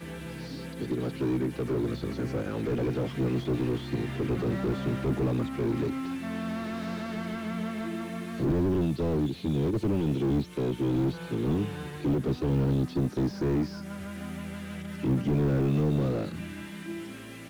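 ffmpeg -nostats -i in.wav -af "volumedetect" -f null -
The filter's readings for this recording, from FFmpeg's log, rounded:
mean_volume: -29.1 dB
max_volume: -14.1 dB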